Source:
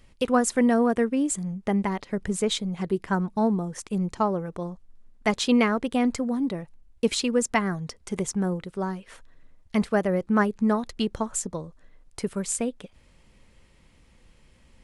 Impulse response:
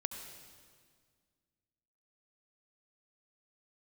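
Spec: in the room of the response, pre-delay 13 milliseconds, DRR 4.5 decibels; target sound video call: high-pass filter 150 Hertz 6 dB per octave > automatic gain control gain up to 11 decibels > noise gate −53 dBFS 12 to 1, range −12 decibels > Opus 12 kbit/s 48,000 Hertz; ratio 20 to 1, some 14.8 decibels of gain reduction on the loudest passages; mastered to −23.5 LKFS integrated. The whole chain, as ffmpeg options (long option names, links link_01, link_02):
-filter_complex "[0:a]acompressor=threshold=-31dB:ratio=20,asplit=2[link_01][link_02];[1:a]atrim=start_sample=2205,adelay=13[link_03];[link_02][link_03]afir=irnorm=-1:irlink=0,volume=-4.5dB[link_04];[link_01][link_04]amix=inputs=2:normalize=0,highpass=frequency=150:poles=1,dynaudnorm=maxgain=11dB,agate=range=-12dB:threshold=-53dB:ratio=12,volume=13dB" -ar 48000 -c:a libopus -b:a 12k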